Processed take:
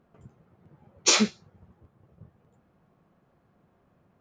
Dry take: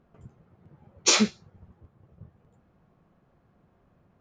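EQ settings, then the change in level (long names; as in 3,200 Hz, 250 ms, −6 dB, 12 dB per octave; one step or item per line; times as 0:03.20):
low-shelf EQ 69 Hz −10 dB
0.0 dB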